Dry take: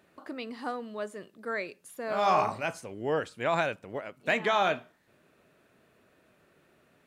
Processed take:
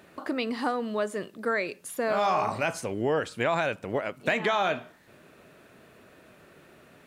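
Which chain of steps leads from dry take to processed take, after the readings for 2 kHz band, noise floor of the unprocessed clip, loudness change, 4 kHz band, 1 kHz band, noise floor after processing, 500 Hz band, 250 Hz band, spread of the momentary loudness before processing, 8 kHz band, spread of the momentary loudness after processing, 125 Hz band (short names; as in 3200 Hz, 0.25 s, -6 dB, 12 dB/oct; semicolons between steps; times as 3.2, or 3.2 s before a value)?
+2.5 dB, -66 dBFS, +2.5 dB, +2.0 dB, +0.5 dB, -56 dBFS, +3.0 dB, +6.0 dB, 14 LU, +6.5 dB, 7 LU, +4.0 dB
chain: in parallel at +1 dB: limiter -21.5 dBFS, peak gain reduction 7.5 dB; on the sum: compressor 3:1, threshold -28 dBFS, peak gain reduction 9 dB; gain +3.5 dB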